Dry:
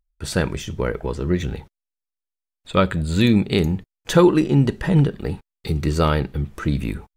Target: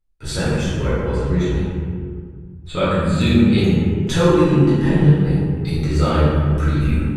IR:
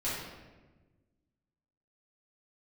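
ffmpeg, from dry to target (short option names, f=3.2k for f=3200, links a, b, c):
-filter_complex "[0:a]asplit=2[a][b];[b]acompressor=threshold=-24dB:ratio=6,volume=-0.5dB[c];[a][c]amix=inputs=2:normalize=0,equalizer=f=4.2k:t=o:w=0.77:g=2.5[d];[1:a]atrim=start_sample=2205,asetrate=25137,aresample=44100[e];[d][e]afir=irnorm=-1:irlink=0,volume=-11.5dB"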